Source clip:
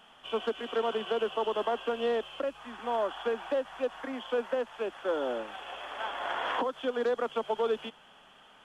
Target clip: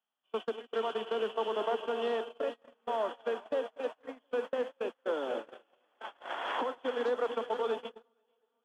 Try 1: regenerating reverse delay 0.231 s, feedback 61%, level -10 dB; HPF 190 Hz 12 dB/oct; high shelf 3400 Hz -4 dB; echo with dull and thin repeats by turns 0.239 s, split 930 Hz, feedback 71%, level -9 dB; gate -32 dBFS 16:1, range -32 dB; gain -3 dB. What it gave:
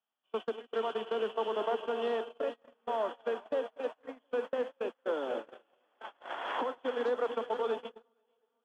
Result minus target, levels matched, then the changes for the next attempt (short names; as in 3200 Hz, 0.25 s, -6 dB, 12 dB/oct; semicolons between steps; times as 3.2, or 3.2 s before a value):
8000 Hz band -3.0 dB
remove: high shelf 3400 Hz -4 dB